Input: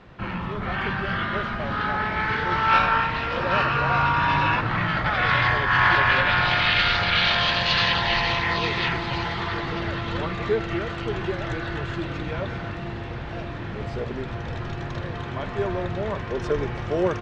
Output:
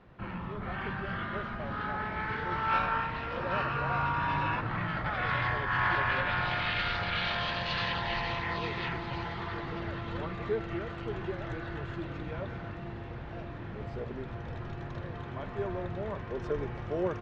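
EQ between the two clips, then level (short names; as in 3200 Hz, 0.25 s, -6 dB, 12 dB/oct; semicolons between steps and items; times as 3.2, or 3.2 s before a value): high shelf 2800 Hz -9 dB; -8.0 dB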